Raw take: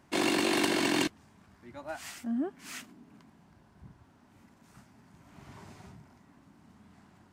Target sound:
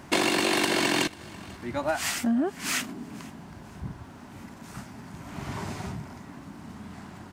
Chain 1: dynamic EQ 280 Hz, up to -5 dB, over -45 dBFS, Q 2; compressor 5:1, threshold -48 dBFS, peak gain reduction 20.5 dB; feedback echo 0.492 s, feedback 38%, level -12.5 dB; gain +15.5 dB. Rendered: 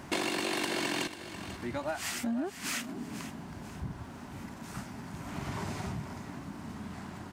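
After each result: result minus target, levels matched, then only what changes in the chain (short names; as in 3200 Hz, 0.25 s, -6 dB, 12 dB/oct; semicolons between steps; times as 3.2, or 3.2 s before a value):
compressor: peak gain reduction +8 dB; echo-to-direct +10 dB
change: compressor 5:1, threshold -38 dBFS, peak gain reduction 12.5 dB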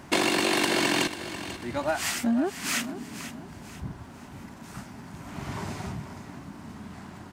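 echo-to-direct +10 dB
change: feedback echo 0.492 s, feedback 38%, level -22.5 dB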